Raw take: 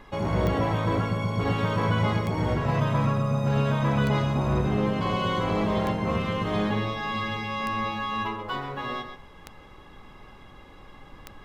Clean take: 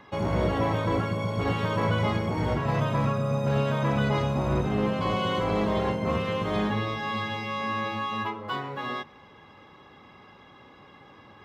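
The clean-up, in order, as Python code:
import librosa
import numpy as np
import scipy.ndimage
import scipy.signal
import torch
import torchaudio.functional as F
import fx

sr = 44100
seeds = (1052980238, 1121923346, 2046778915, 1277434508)

y = fx.fix_declick_ar(x, sr, threshold=10.0)
y = fx.noise_reduce(y, sr, print_start_s=10.28, print_end_s=10.78, reduce_db=6.0)
y = fx.fix_echo_inverse(y, sr, delay_ms=129, level_db=-9.0)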